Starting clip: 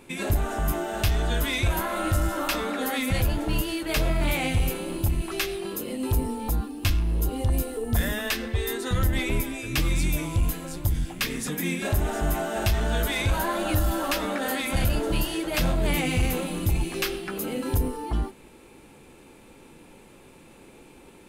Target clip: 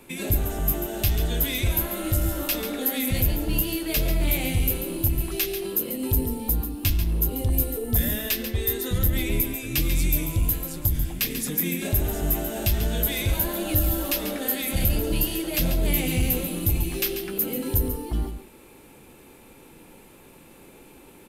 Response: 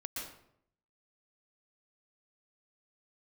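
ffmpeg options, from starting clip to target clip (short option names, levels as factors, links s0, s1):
-filter_complex "[0:a]equalizer=f=13000:t=o:w=0.38:g=13.5,acrossover=split=360|620|2000[s0][s1][s2][s3];[s2]acompressor=threshold=0.00316:ratio=6[s4];[s0][s1][s4][s3]amix=inputs=4:normalize=0,aecho=1:1:140:0.335"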